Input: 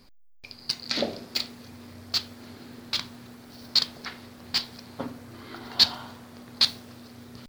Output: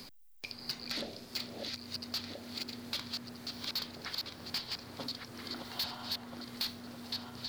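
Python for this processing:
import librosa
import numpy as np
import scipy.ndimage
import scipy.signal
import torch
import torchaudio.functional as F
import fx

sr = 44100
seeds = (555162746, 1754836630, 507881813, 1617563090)

y = fx.reverse_delay_fb(x, sr, ms=664, feedback_pct=45, wet_db=-6)
y = 10.0 ** (-22.5 / 20.0) * np.tanh(y / 10.0 ** (-22.5 / 20.0))
y = fx.band_squash(y, sr, depth_pct=70)
y = F.gain(torch.from_numpy(y), -6.5).numpy()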